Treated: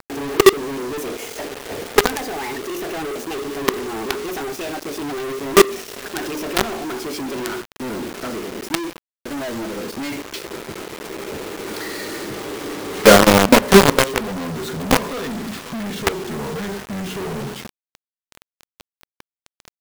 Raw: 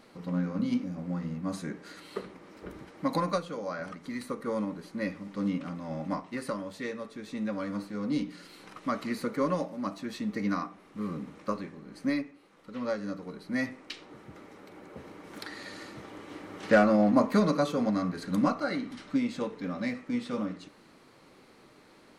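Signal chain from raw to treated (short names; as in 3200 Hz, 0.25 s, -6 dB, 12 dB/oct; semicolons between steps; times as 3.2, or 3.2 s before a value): speed glide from 159% -> 65%; bell 410 Hz +10.5 dB 0.47 oct; notches 60/120/180/240/300/360/420/480/540/600 Hz; added harmonics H 4 -43 dB, 5 -14 dB, 6 -30 dB, 8 -31 dB, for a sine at -6.5 dBFS; companded quantiser 2-bit; gain -1 dB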